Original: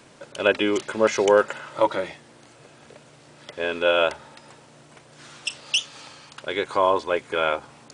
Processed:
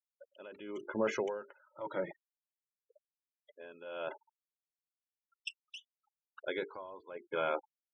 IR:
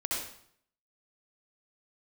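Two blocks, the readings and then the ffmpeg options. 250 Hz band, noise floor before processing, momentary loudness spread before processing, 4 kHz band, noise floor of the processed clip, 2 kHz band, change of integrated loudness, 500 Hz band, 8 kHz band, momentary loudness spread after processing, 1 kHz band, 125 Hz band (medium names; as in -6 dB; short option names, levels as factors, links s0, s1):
-14.5 dB, -51 dBFS, 18 LU, -22.0 dB, under -85 dBFS, -17.5 dB, -16.5 dB, -16.5 dB, -23.5 dB, 18 LU, -18.0 dB, -14.0 dB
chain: -af "bandreject=f=50:t=h:w=6,bandreject=f=100:t=h:w=6,bandreject=f=150:t=h:w=6,bandreject=f=200:t=h:w=6,bandreject=f=250:t=h:w=6,bandreject=f=300:t=h:w=6,bandreject=f=350:t=h:w=6,bandreject=f=400:t=h:w=6,bandreject=f=450:t=h:w=6,afftfilt=real='re*gte(hypot(re,im),0.0355)':imag='im*gte(hypot(re,im),0.0355)':win_size=1024:overlap=0.75,lowpass=f=1800:p=1,adynamicequalizer=threshold=0.00891:dfrequency=160:dqfactor=1.8:tfrequency=160:tqfactor=1.8:attack=5:release=100:ratio=0.375:range=2:mode=boostabove:tftype=bell,alimiter=limit=0.158:level=0:latency=1:release=17,aeval=exprs='val(0)*pow(10,-19*(0.5-0.5*cos(2*PI*0.93*n/s))/20)':c=same,volume=0.562"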